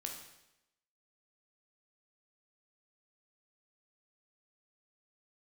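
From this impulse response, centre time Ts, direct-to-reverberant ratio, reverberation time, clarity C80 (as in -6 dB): 33 ms, 1.5 dB, 0.90 s, 7.5 dB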